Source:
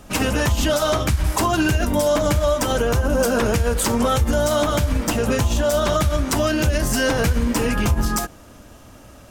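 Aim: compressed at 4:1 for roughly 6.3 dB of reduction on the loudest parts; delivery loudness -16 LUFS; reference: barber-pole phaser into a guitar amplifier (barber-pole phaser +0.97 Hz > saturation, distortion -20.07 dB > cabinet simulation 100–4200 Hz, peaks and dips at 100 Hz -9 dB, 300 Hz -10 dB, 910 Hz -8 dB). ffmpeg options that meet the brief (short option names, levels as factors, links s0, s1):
-filter_complex "[0:a]acompressor=threshold=0.0794:ratio=4,asplit=2[s0][s1];[s1]afreqshift=0.97[s2];[s0][s2]amix=inputs=2:normalize=1,asoftclip=threshold=0.1,highpass=100,equalizer=f=100:t=q:w=4:g=-9,equalizer=f=300:t=q:w=4:g=-10,equalizer=f=910:t=q:w=4:g=-8,lowpass=f=4200:w=0.5412,lowpass=f=4200:w=1.3066,volume=6.68"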